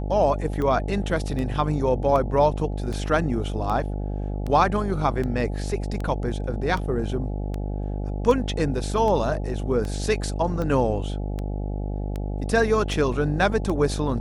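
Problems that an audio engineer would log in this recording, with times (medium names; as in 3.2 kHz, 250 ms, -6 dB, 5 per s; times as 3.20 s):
buzz 50 Hz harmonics 17 -28 dBFS
tick 78 rpm -18 dBFS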